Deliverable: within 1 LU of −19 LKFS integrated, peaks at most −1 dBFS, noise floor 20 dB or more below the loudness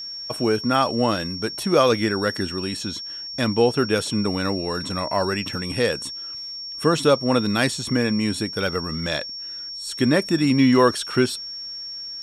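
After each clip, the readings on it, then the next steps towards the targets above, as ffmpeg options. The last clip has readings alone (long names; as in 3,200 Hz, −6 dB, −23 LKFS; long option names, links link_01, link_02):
interfering tone 5,500 Hz; level of the tone −31 dBFS; integrated loudness −22.5 LKFS; sample peak −5.0 dBFS; target loudness −19.0 LKFS
→ -af "bandreject=frequency=5500:width=30"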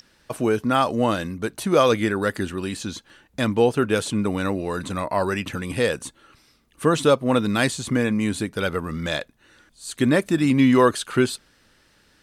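interfering tone none found; integrated loudness −22.0 LKFS; sample peak −5.5 dBFS; target loudness −19.0 LKFS
→ -af "volume=3dB"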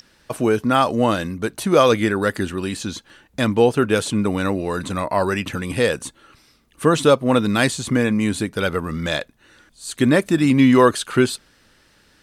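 integrated loudness −19.0 LKFS; sample peak −2.5 dBFS; background noise floor −57 dBFS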